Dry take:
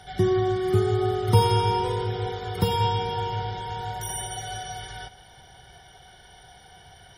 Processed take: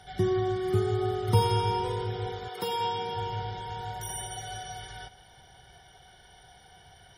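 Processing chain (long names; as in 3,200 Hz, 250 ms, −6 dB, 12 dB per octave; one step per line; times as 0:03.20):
0:02.47–0:03.14: high-pass filter 490 Hz → 150 Hz 12 dB per octave
level −4.5 dB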